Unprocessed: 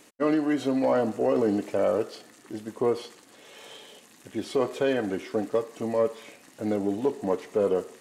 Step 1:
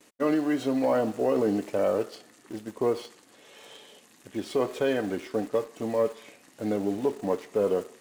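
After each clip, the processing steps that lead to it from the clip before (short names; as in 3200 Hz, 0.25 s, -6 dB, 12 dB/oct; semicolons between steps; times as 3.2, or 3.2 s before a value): gate with hold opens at -47 dBFS; in parallel at -11.5 dB: requantised 6-bit, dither none; on the sum: gain -3 dB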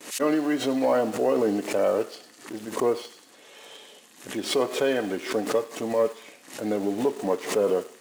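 HPF 240 Hz 6 dB/oct; thin delay 0.1 s, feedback 49%, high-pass 3100 Hz, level -10 dB; backwards sustainer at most 120 dB/s; gain +3 dB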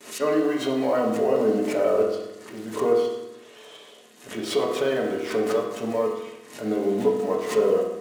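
reverb RT60 0.90 s, pre-delay 4 ms, DRR -2 dB; gain -3.5 dB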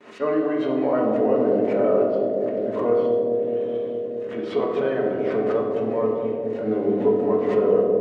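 LPF 2000 Hz 12 dB/oct; on a send: analogue delay 0.21 s, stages 1024, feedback 83%, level -3.5 dB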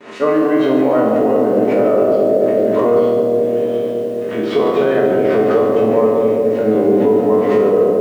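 spectral trails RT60 0.65 s; limiter -14 dBFS, peak gain reduction 7 dB; lo-fi delay 0.144 s, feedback 55%, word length 8-bit, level -10 dB; gain +8.5 dB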